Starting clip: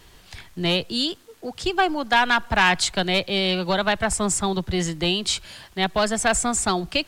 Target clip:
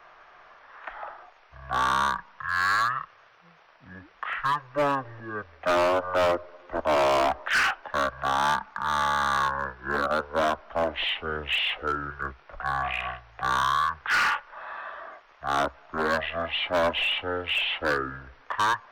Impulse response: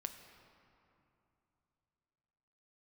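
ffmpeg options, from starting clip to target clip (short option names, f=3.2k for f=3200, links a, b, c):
-filter_complex "[0:a]asetrate=16493,aresample=44100,acrossover=split=570 2300:gain=0.0631 1 0.126[a][b][c];[a][b][c]amix=inputs=3:normalize=0,asoftclip=type=hard:threshold=-25dB,volume=5.5dB"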